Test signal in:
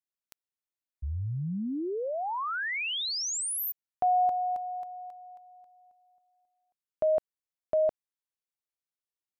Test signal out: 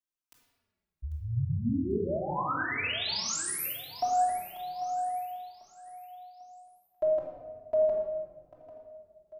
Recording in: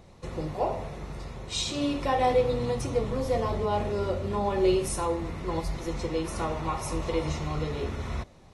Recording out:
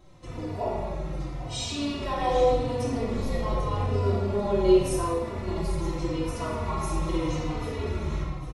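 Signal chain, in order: feedback echo 0.794 s, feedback 37%, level -13 dB; shoebox room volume 1400 m³, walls mixed, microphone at 2.9 m; endless flanger 3.3 ms -0.84 Hz; gain -2.5 dB

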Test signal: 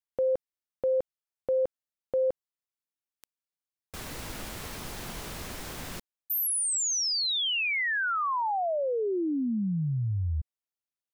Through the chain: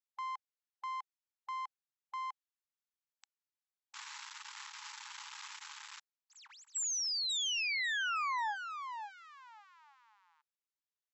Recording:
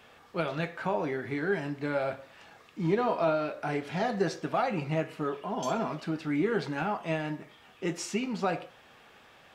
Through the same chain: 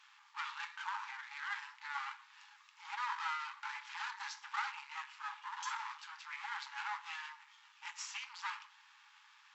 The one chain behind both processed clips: half-wave rectifier; brick-wall FIR band-pass 810–7800 Hz; gain -1 dB

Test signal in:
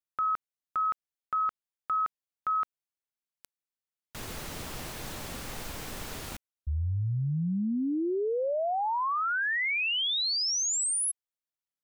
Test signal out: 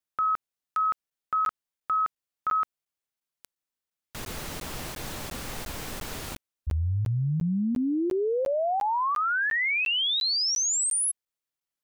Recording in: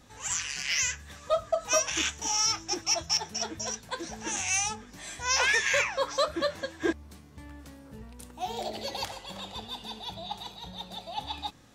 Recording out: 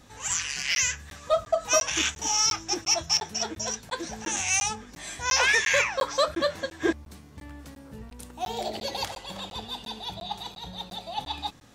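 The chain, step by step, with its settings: crackling interface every 0.35 s, samples 512, zero, from 0.75; gain +3 dB

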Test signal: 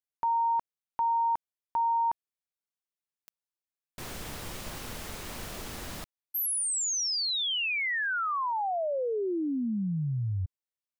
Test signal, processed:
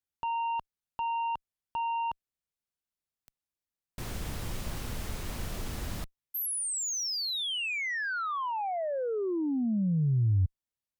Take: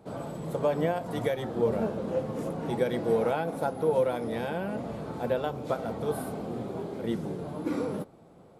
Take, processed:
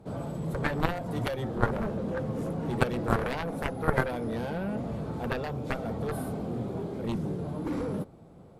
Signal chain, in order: added harmonics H 3 -6 dB, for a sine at -14 dBFS; low shelf 180 Hz +11.5 dB; gain +4.5 dB

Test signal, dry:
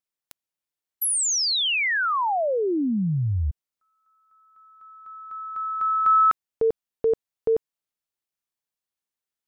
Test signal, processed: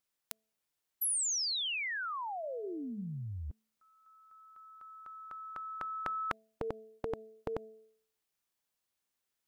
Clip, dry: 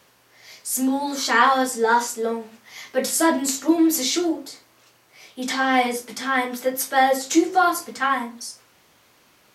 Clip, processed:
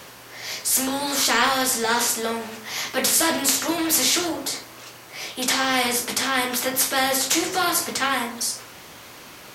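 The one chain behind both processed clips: de-hum 219.7 Hz, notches 3; spectral compressor 2:1; gain +2.5 dB

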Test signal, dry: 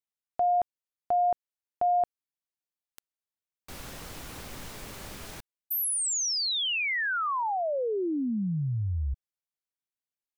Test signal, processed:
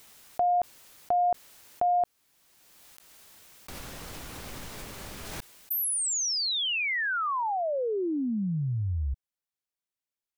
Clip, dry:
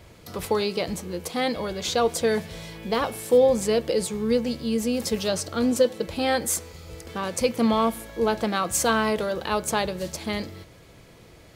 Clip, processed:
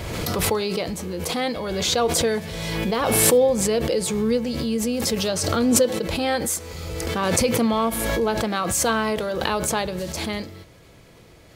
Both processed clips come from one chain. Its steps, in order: backwards sustainer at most 24 dB/s

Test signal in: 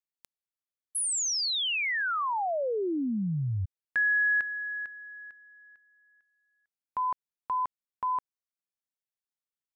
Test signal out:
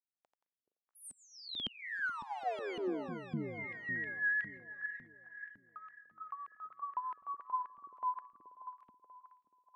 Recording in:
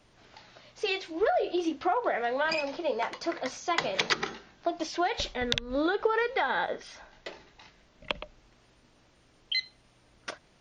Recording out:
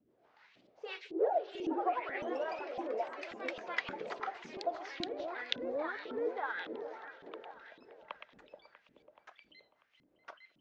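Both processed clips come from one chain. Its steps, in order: rotary speaker horn 6.3 Hz; repeats that get brighter 0.214 s, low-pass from 400 Hz, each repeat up 1 oct, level -6 dB; LFO band-pass saw up 1.8 Hz 220–3100 Hz; echoes that change speed 0.114 s, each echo +2 st, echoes 2, each echo -6 dB; gain -1 dB

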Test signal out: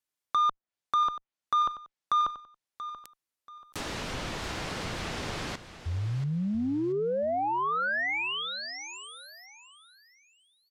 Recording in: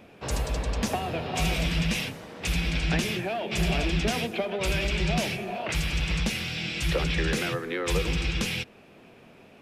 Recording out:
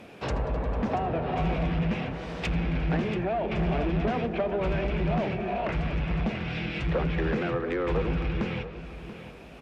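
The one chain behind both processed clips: low shelf 76 Hz -6 dB; in parallel at -3.5 dB: one-sided clip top -23 dBFS; on the sum: treble ducked by the level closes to 1300 Hz, closed at -23 dBFS; soft clip -20.5 dBFS; on a send: feedback echo 0.683 s, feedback 30%, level -13 dB

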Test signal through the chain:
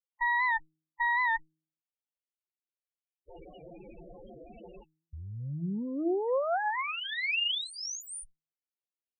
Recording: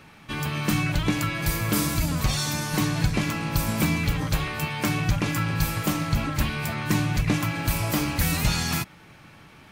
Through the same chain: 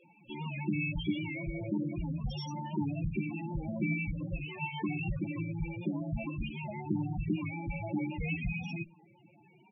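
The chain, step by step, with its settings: minimum comb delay 0.34 ms; tone controls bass -10 dB, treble -10 dB; comb 5.7 ms, depth 37%; de-hum 157.7 Hz, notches 2; added harmonics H 7 -43 dB, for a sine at -13 dBFS; vibrato 0.72 Hz 5.9 cents; loudest bins only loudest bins 8; record warp 78 rpm, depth 100 cents; gain -1 dB

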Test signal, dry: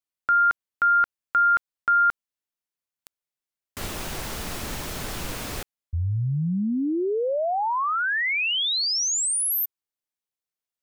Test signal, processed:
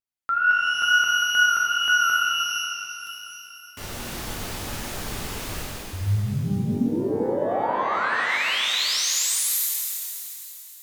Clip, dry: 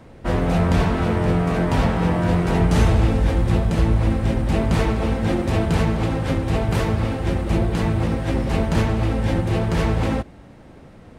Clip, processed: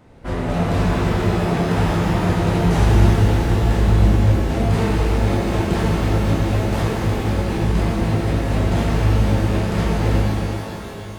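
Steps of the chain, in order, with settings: wow and flutter 74 cents; shimmer reverb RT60 3.2 s, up +12 st, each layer -8 dB, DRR -4 dB; gain -5.5 dB

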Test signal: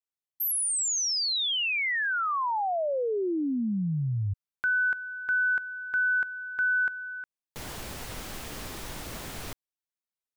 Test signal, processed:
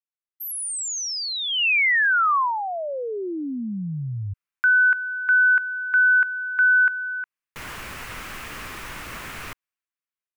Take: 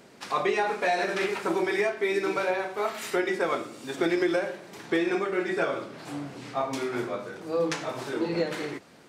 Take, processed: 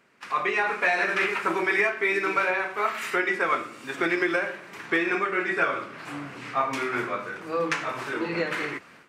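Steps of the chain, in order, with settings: band shelf 1700 Hz +9.5 dB; AGC gain up to 7 dB; gate with hold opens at -25 dBFS, hold 0.229 s, range -6 dB; gain -7.5 dB

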